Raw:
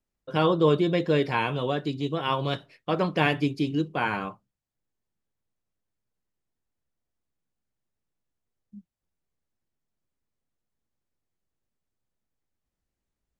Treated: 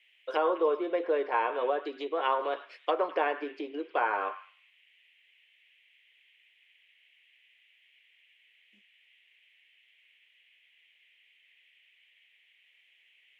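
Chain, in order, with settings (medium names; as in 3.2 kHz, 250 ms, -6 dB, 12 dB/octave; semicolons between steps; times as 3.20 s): low-pass that closes with the level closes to 1.4 kHz, closed at -23.5 dBFS; compression 2.5:1, threshold -27 dBFS, peak gain reduction 7.5 dB; inverse Chebyshev high-pass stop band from 160 Hz, stop band 50 dB; band noise 1.9–3.2 kHz -69 dBFS; on a send: repeats whose band climbs or falls 103 ms, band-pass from 1.4 kHz, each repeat 0.7 oct, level -10.5 dB; on the sum: trim +4 dB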